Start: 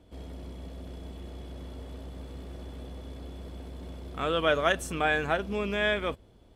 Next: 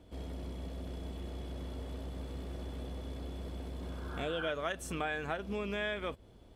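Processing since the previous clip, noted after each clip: spectral repair 3.81–4.46, 770–1700 Hz both; compressor 4:1, threshold -34 dBFS, peak gain reduction 12 dB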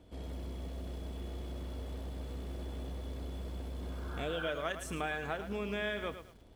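lo-fi delay 0.11 s, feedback 35%, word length 9-bit, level -10 dB; gain -1 dB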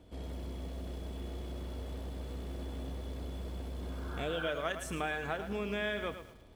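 reverb RT60 1.2 s, pre-delay 83 ms, DRR 18 dB; gain +1 dB

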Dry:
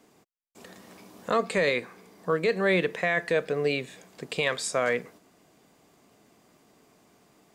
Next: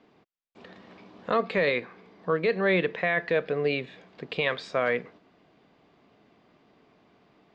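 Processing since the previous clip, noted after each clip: LPF 4000 Hz 24 dB/oct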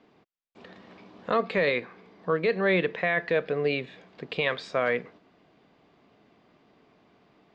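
nothing audible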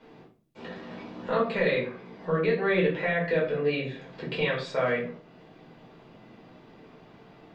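compressor 1.5:1, threshold -48 dBFS, peak gain reduction 10 dB; shoebox room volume 320 m³, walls furnished, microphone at 4.7 m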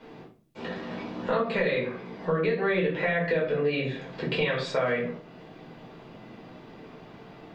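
compressor 4:1, threshold -28 dBFS, peak gain reduction 8 dB; gain +5 dB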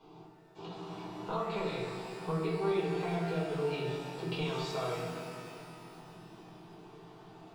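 fixed phaser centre 360 Hz, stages 8; shimmer reverb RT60 2.5 s, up +12 st, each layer -8 dB, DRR 2.5 dB; gain -5 dB

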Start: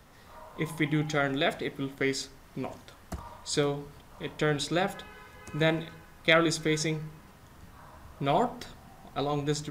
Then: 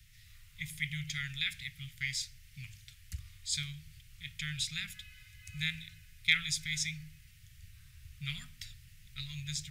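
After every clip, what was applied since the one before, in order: elliptic band-stop 120–2200 Hz, stop band 50 dB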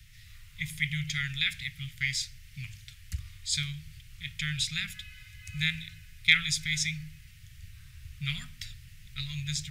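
high shelf 5700 Hz -4.5 dB; gain +6.5 dB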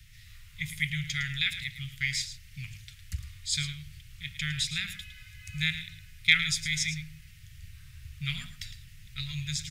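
echo 0.109 s -11.5 dB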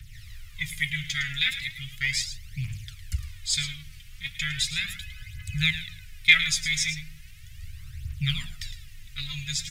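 phaser 0.37 Hz, delay 4.3 ms, feedback 62%; gain +2 dB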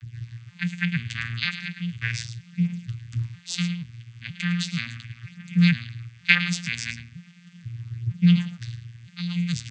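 arpeggiated vocoder bare fifth, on A#2, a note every 0.476 s; gain +4.5 dB

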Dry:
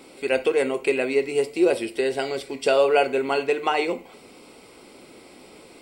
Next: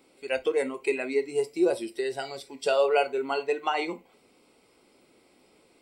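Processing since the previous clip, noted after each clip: spectral noise reduction 10 dB; gain -4 dB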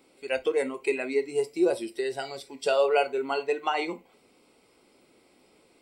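nothing audible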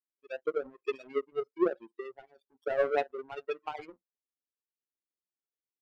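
loudest bins only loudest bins 8; power-law curve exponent 2

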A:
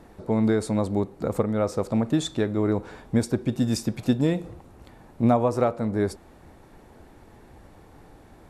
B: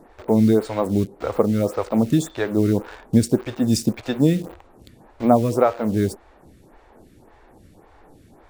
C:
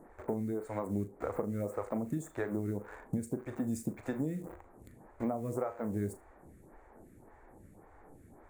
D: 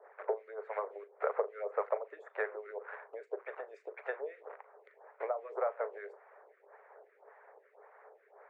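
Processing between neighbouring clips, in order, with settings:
in parallel at -4.5 dB: requantised 6-bit, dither none; on the sum: photocell phaser 1.8 Hz; gain +3 dB
band shelf 3900 Hz -15.5 dB 1.3 oct; compressor 12:1, threshold -24 dBFS, peak gain reduction 15 dB; on a send: flutter echo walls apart 6.7 m, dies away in 0.2 s; on the sum: gain -7 dB
LPF 2600 Hz 24 dB/oct; harmonic-percussive split harmonic -16 dB; rippled Chebyshev high-pass 410 Hz, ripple 3 dB; gain +8.5 dB

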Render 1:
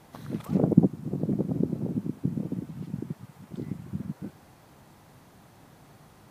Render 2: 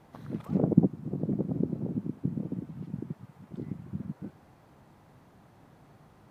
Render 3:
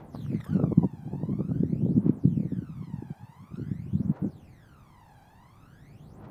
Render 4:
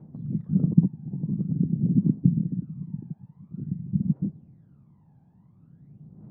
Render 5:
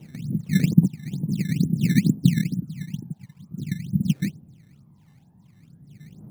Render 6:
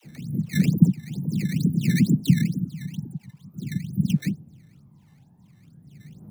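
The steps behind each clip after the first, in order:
high shelf 3100 Hz -10.5 dB; gain -2.5 dB
phaser 0.48 Hz, delay 1.3 ms, feedback 75%
band-pass 170 Hz, Q 2.1; gain +4.5 dB
decimation with a swept rate 13×, swing 160% 2.2 Hz; gain +2.5 dB
dispersion lows, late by 50 ms, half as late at 450 Hz

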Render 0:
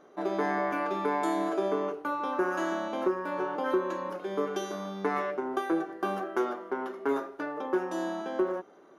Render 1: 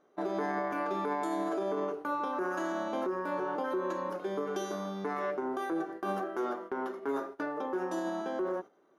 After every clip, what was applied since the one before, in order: gate -42 dBFS, range -11 dB; dynamic EQ 2600 Hz, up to -4 dB, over -53 dBFS, Q 1.5; limiter -24.5 dBFS, peak gain reduction 9.5 dB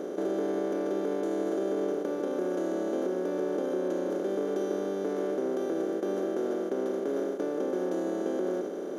per-bin compression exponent 0.2; graphic EQ 250/500/1000/2000 Hz +5/+9/-12/-4 dB; gain -8 dB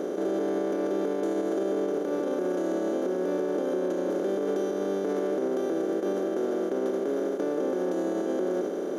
limiter -24.5 dBFS, peak gain reduction 6 dB; gain +4.5 dB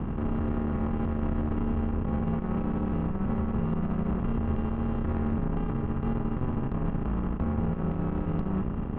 air absorption 240 m; mistuned SSB -360 Hz 430–3000 Hz; added harmonics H 4 -20 dB, 8 -27 dB, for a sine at -21 dBFS; gain +4.5 dB

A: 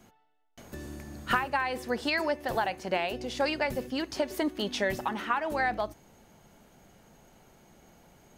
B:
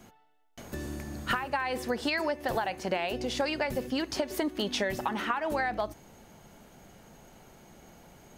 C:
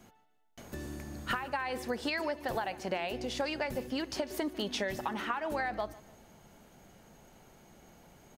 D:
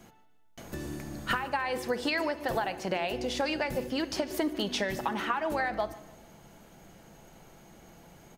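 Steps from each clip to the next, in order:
compressor 6:1, threshold -30 dBFS, peak gain reduction 9.5 dB; gain +4 dB
feedback echo 0.148 s, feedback 41%, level -20 dB; gain -4 dB
shoebox room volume 3400 m³, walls furnished, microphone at 0.7 m; gain +3.5 dB

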